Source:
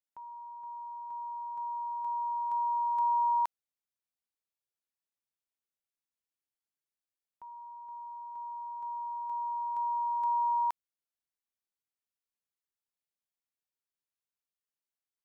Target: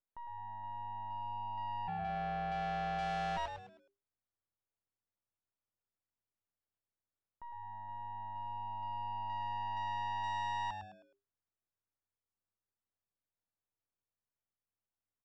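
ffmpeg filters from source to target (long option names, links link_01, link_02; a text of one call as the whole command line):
ffmpeg -i in.wav -filter_complex "[0:a]aeval=exprs='if(lt(val(0),0),0.251*val(0),val(0))':channel_layout=same,lowpass=1400,asplit=3[link_01][link_02][link_03];[link_01]afade=type=out:start_time=1.87:duration=0.02[link_04];[link_02]afreqshift=-170,afade=type=in:start_time=1.87:duration=0.02,afade=type=out:start_time=3.36:duration=0.02[link_05];[link_03]afade=type=in:start_time=3.36:duration=0.02[link_06];[link_04][link_05][link_06]amix=inputs=3:normalize=0,asoftclip=type=tanh:threshold=-40dB,asplit=5[link_07][link_08][link_09][link_10][link_11];[link_08]adelay=105,afreqshift=-100,volume=-7dB[link_12];[link_09]adelay=210,afreqshift=-200,volume=-15.9dB[link_13];[link_10]adelay=315,afreqshift=-300,volume=-24.7dB[link_14];[link_11]adelay=420,afreqshift=-400,volume=-33.6dB[link_15];[link_07][link_12][link_13][link_14][link_15]amix=inputs=5:normalize=0,volume=4dB" out.wav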